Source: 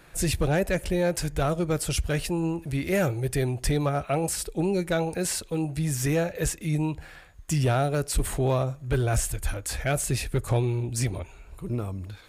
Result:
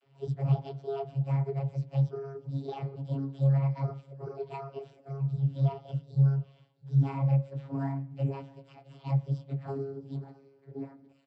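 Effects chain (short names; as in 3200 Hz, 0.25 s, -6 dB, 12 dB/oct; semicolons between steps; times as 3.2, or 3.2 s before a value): inharmonic rescaling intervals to 126%; bell 6000 Hz -13 dB 0.37 oct; de-hum 162.1 Hz, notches 14; varispeed +9%; vocoder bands 32, saw 137 Hz; on a send: echo 0.661 s -23.5 dB; on the sum: spring tank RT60 1 s, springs 40 ms, chirp 30 ms, DRR 19 dB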